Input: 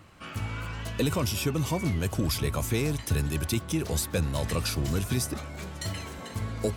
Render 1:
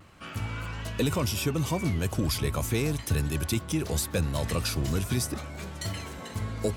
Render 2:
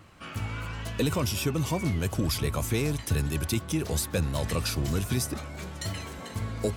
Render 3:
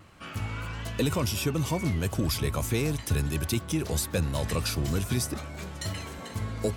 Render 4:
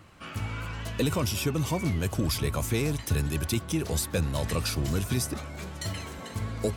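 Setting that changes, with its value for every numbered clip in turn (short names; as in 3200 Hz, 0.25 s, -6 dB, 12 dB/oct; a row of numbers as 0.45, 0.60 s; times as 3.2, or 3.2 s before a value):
vibrato, rate: 0.74, 5.8, 1.5, 15 Hz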